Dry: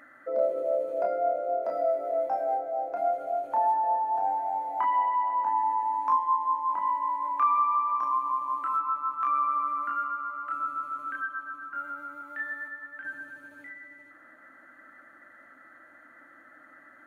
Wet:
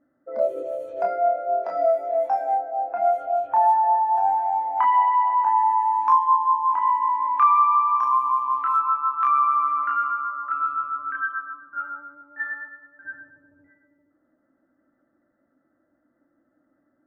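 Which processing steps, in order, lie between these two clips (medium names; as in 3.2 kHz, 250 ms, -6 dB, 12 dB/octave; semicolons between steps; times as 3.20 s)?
level-controlled noise filter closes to 340 Hz, open at -24 dBFS; spectral noise reduction 10 dB; trim +7 dB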